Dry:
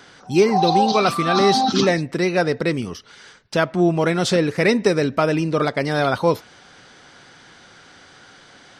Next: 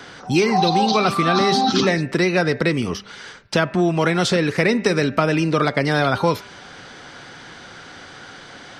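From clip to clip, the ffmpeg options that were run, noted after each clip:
-filter_complex "[0:a]highshelf=f=5.9k:g=-6.5,bandreject=f=197.8:t=h:w=4,bandreject=f=395.6:t=h:w=4,bandreject=f=593.4:t=h:w=4,bandreject=f=791.2:t=h:w=4,bandreject=f=989:t=h:w=4,bandreject=f=1.1868k:t=h:w=4,bandreject=f=1.3846k:t=h:w=4,bandreject=f=1.5824k:t=h:w=4,bandreject=f=1.7802k:t=h:w=4,bandreject=f=1.978k:t=h:w=4,bandreject=f=2.1758k:t=h:w=4,bandreject=f=2.3736k:t=h:w=4,bandreject=f=2.5714k:t=h:w=4,bandreject=f=2.7692k:t=h:w=4,acrossover=split=290|1100[a][b][c];[a]acompressor=threshold=-30dB:ratio=4[d];[b]acompressor=threshold=-30dB:ratio=4[e];[c]acompressor=threshold=-29dB:ratio=4[f];[d][e][f]amix=inputs=3:normalize=0,volume=8dB"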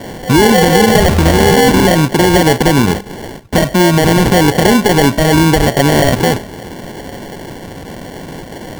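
-af "highshelf=f=7.9k:g=-6,acrusher=samples=35:mix=1:aa=0.000001,alimiter=level_in=13.5dB:limit=-1dB:release=50:level=0:latency=1,volume=-1dB"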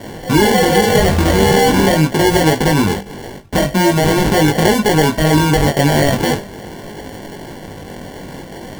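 -af "flanger=delay=19:depth=2.1:speed=0.42"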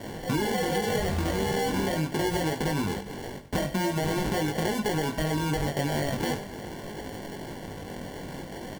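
-af "acompressor=threshold=-17dB:ratio=6,aecho=1:1:95|190|285|380|475:0.158|0.0824|0.0429|0.0223|0.0116,volume=-7.5dB"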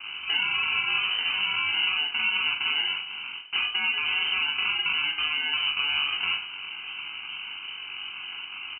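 -filter_complex "[0:a]asplit=2[a][b];[b]adelay=41,volume=-6dB[c];[a][c]amix=inputs=2:normalize=0,lowpass=f=2.6k:t=q:w=0.5098,lowpass=f=2.6k:t=q:w=0.6013,lowpass=f=2.6k:t=q:w=0.9,lowpass=f=2.6k:t=q:w=2.563,afreqshift=-3100"

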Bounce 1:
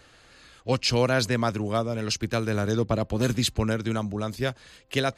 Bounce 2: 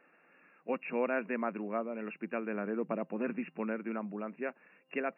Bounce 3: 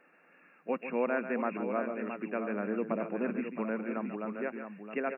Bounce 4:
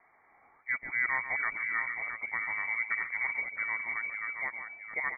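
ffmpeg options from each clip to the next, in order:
-af "afftfilt=real='re*between(b*sr/4096,160,2800)':imag='im*between(b*sr/4096,160,2800)':win_size=4096:overlap=0.75,volume=-8.5dB"
-filter_complex "[0:a]aecho=1:1:141|668:0.299|0.398,acrossover=split=2500[a][b];[b]acompressor=threshold=-54dB:ratio=4:attack=1:release=60[c];[a][c]amix=inputs=2:normalize=0,volume=1.5dB"
-af "lowpass=f=2.1k:t=q:w=0.5098,lowpass=f=2.1k:t=q:w=0.6013,lowpass=f=2.1k:t=q:w=0.9,lowpass=f=2.1k:t=q:w=2.563,afreqshift=-2500"

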